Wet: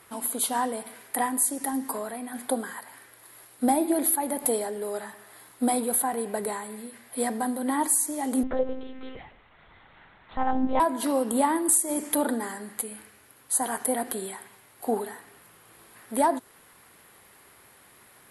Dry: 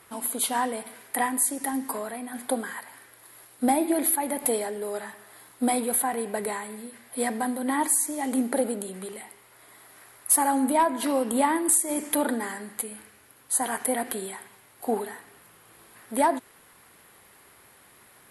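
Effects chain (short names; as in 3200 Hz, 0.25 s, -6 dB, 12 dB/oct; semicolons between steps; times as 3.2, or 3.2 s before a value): dynamic EQ 2300 Hz, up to -6 dB, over -46 dBFS, Q 1.5; 8.43–10.8 monotone LPC vocoder at 8 kHz 260 Hz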